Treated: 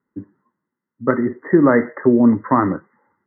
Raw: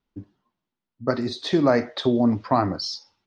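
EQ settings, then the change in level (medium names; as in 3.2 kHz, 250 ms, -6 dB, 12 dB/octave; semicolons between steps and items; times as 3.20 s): high-pass 160 Hz 12 dB/octave; brick-wall FIR low-pass 2.1 kHz; peaking EQ 700 Hz -15 dB 0.37 oct; +8.5 dB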